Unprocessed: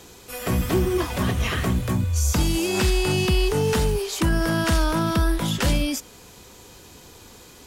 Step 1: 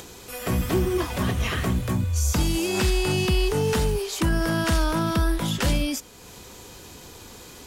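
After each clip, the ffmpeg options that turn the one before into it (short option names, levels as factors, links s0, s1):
-af "acompressor=mode=upward:threshold=0.0178:ratio=2.5,volume=0.841"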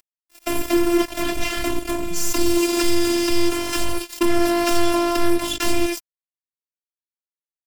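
-af "acrusher=bits=3:mix=0:aa=0.5,aecho=1:1:3.3:0.78,afftfilt=real='hypot(re,im)*cos(PI*b)':imag='0':win_size=512:overlap=0.75,volume=1.58"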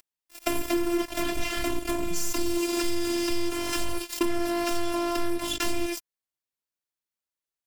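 -af "acompressor=threshold=0.0501:ratio=5,volume=1.41"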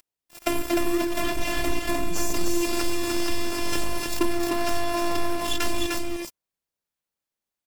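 -filter_complex "[0:a]asplit=2[s0][s1];[s1]acrusher=samples=17:mix=1:aa=0.000001:lfo=1:lforange=27.2:lforate=1.4,volume=0.335[s2];[s0][s2]amix=inputs=2:normalize=0,aecho=1:1:303:0.668"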